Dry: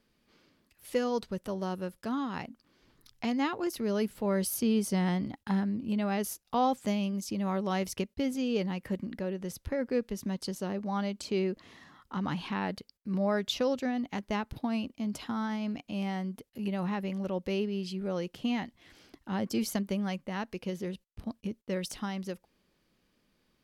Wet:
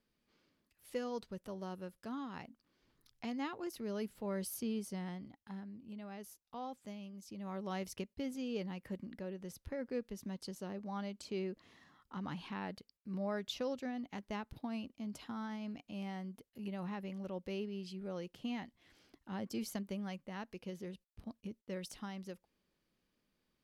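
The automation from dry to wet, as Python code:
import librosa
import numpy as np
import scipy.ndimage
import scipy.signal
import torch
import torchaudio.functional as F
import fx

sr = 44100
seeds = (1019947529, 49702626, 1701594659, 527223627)

y = fx.gain(x, sr, db=fx.line((4.58, -10.0), (5.41, -17.5), (7.13, -17.5), (7.69, -9.5)))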